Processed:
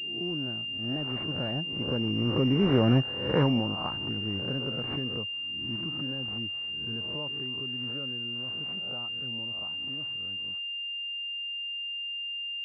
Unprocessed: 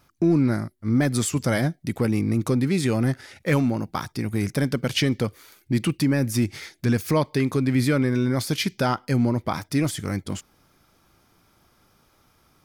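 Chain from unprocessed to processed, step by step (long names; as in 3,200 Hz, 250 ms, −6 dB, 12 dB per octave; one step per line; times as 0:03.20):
peak hold with a rise ahead of every peak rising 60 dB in 0.62 s
source passing by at 0:02.95, 15 m/s, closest 6.2 metres
switching amplifier with a slow clock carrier 2,800 Hz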